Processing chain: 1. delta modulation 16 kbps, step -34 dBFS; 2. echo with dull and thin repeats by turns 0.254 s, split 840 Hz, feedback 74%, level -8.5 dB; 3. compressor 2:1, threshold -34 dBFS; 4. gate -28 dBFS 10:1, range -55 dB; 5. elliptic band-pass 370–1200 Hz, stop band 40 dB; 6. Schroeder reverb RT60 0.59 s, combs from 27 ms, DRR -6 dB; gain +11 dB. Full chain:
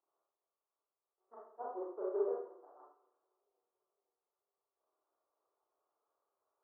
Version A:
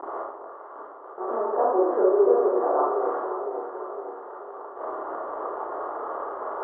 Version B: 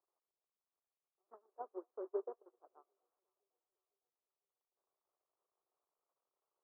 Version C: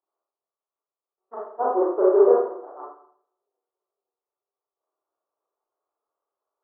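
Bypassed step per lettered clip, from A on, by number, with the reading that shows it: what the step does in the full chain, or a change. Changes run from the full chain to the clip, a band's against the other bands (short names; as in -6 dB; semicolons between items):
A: 4, momentary loudness spread change -2 LU; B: 6, momentary loudness spread change +1 LU; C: 3, loudness change +20.0 LU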